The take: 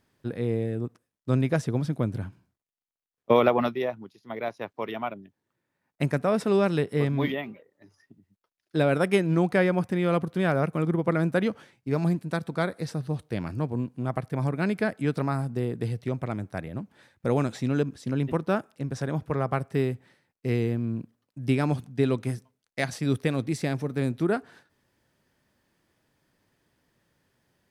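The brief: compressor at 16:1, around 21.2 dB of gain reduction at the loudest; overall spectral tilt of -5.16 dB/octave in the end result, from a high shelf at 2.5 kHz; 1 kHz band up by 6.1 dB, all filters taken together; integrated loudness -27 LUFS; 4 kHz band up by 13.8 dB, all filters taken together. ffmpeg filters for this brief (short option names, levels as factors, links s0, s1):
-af "equalizer=f=1000:t=o:g=6,highshelf=f=2500:g=9,equalizer=f=4000:t=o:g=9,acompressor=threshold=0.0251:ratio=16,volume=3.76"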